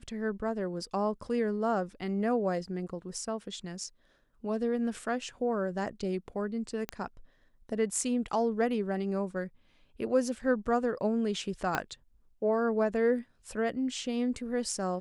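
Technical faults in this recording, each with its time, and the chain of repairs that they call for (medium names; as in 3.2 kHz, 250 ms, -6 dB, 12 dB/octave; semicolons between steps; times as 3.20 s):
6.89 s: pop -18 dBFS
11.75 s: pop -14 dBFS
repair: de-click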